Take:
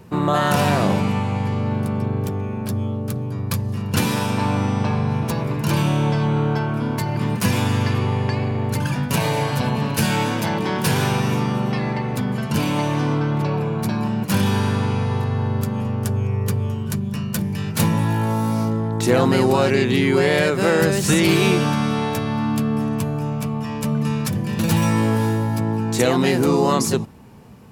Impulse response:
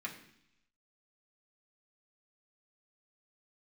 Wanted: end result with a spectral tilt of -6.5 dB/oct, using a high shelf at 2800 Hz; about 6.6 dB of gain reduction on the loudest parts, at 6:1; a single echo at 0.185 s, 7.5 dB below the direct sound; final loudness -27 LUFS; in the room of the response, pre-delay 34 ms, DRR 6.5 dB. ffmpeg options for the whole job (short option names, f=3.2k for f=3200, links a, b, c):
-filter_complex "[0:a]highshelf=f=2.8k:g=-5.5,acompressor=threshold=-20dB:ratio=6,aecho=1:1:185:0.422,asplit=2[a][b];[1:a]atrim=start_sample=2205,adelay=34[c];[b][c]afir=irnorm=-1:irlink=0,volume=-7.5dB[d];[a][d]amix=inputs=2:normalize=0,volume=-4dB"